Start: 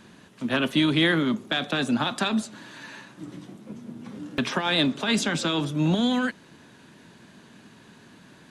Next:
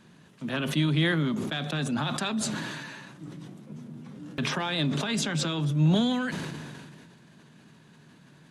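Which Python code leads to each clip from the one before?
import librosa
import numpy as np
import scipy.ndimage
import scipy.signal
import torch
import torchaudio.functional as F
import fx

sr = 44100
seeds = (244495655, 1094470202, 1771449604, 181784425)

y = fx.peak_eq(x, sr, hz=150.0, db=13.0, octaves=0.28)
y = fx.sustainer(y, sr, db_per_s=27.0)
y = F.gain(torch.from_numpy(y), -7.0).numpy()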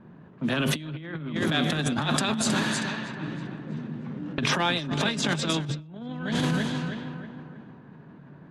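y = fx.echo_feedback(x, sr, ms=318, feedback_pct=48, wet_db=-8.5)
y = fx.over_compress(y, sr, threshold_db=-30.0, ratio=-0.5)
y = fx.env_lowpass(y, sr, base_hz=940.0, full_db=-25.0)
y = F.gain(torch.from_numpy(y), 3.5).numpy()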